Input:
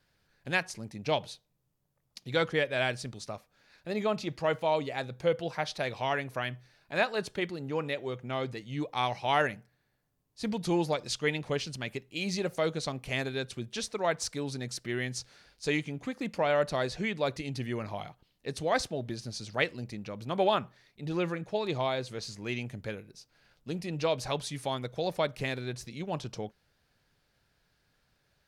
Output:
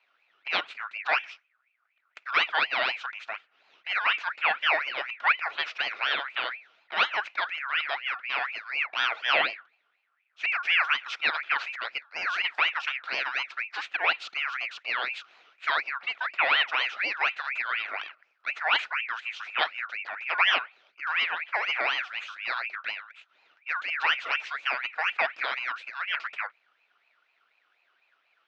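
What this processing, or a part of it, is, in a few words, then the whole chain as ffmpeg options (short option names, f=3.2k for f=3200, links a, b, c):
voice changer toy: -af "aeval=exprs='val(0)*sin(2*PI*1900*n/s+1900*0.35/4.1*sin(2*PI*4.1*n/s))':c=same,highpass=490,equalizer=f=680:t=q:w=4:g=4,equalizer=f=1.4k:t=q:w=4:g=7,equalizer=f=2.5k:t=q:w=4:g=6,lowpass=f=4.1k:w=0.5412,lowpass=f=4.1k:w=1.3066,volume=3dB"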